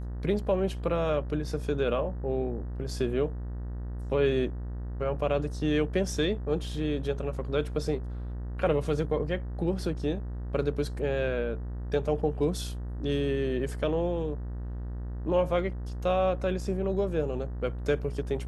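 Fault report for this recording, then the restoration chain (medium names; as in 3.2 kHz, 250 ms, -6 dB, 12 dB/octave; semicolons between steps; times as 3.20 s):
buzz 60 Hz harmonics 32 -35 dBFS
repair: de-hum 60 Hz, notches 32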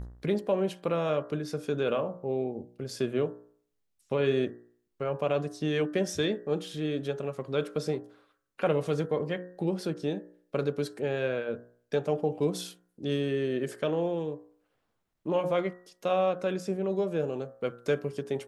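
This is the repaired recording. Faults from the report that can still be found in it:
nothing left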